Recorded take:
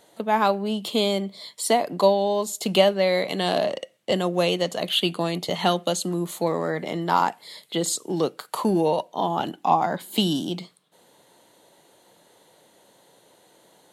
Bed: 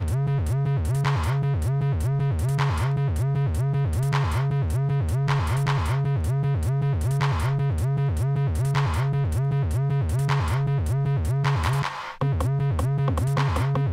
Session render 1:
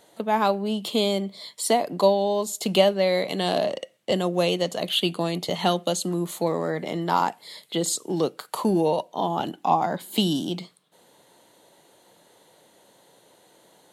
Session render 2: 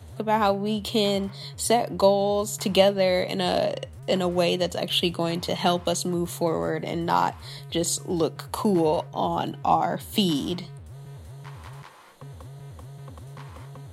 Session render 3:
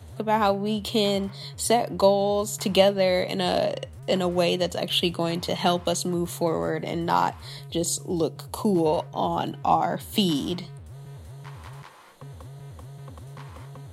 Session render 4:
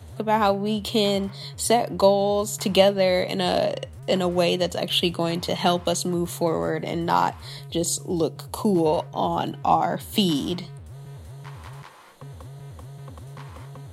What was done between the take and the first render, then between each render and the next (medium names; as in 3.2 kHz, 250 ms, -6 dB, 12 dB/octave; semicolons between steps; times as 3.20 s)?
dynamic bell 1.6 kHz, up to -3 dB, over -34 dBFS, Q 0.82
add bed -18.5 dB
7.67–8.86 s: peaking EQ 1.7 kHz -10.5 dB 1.3 oct
trim +1.5 dB